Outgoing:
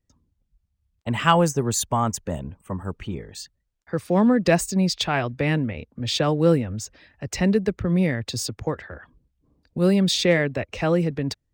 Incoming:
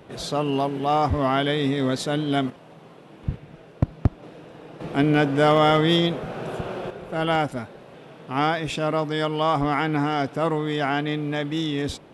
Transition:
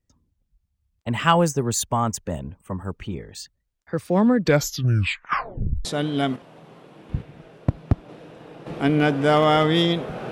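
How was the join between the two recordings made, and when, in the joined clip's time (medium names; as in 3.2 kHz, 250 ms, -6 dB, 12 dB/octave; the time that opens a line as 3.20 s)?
outgoing
4.35 s: tape stop 1.50 s
5.85 s: go over to incoming from 1.99 s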